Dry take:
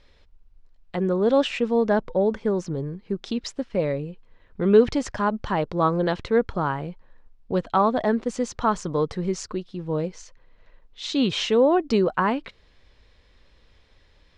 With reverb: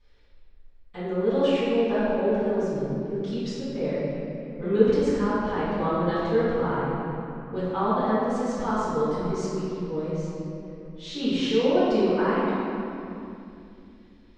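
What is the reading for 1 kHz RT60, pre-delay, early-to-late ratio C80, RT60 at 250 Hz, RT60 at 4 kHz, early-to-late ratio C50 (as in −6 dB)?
2.5 s, 4 ms, −2.0 dB, 3.6 s, 1.8 s, −4.5 dB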